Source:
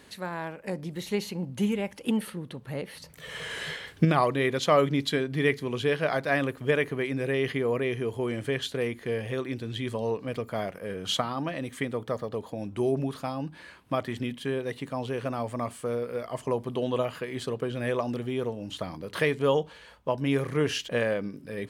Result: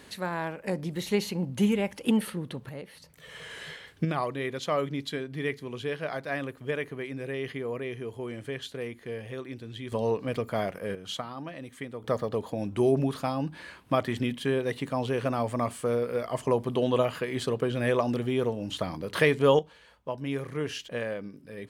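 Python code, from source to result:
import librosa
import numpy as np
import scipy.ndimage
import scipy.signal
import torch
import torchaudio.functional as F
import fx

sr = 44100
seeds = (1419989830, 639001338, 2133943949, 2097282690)

y = fx.gain(x, sr, db=fx.steps((0.0, 2.5), (2.69, -6.5), (9.92, 2.0), (10.95, -7.5), (12.04, 3.0), (19.59, -6.0)))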